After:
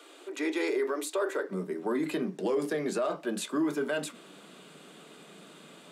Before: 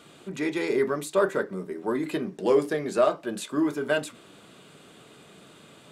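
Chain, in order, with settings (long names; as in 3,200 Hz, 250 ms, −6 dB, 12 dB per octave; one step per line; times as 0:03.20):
Butterworth high-pass 280 Hz 72 dB per octave, from 0:01.48 150 Hz
brickwall limiter −21.5 dBFS, peak gain reduction 11 dB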